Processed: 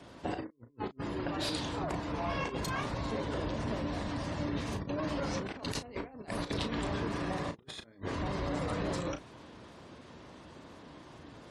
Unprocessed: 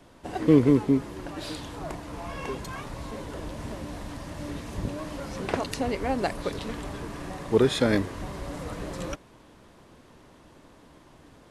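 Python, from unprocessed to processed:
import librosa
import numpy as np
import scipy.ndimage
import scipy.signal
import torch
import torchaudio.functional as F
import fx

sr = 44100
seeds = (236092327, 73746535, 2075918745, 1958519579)

y = scipy.signal.sosfilt(scipy.signal.butter(2, 60.0, 'highpass', fs=sr, output='sos'), x)
y = fx.peak_eq(y, sr, hz=4200.0, db=2.0, octaves=1.0)
y = fx.over_compress(y, sr, threshold_db=-35.0, ratio=-0.5)
y = fx.spec_gate(y, sr, threshold_db=-30, keep='strong')
y = fx.doubler(y, sr, ms=35.0, db=-9.5)
y = F.gain(torch.from_numpy(y), -3.0).numpy()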